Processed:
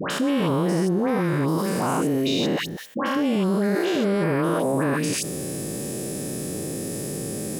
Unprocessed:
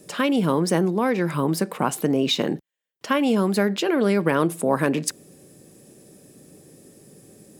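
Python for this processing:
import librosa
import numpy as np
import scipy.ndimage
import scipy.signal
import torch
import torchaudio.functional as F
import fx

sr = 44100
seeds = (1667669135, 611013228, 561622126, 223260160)

y = fx.spec_steps(x, sr, hold_ms=200)
y = fx.dispersion(y, sr, late='highs', ms=104.0, hz=1300.0)
y = fx.env_flatten(y, sr, amount_pct=70)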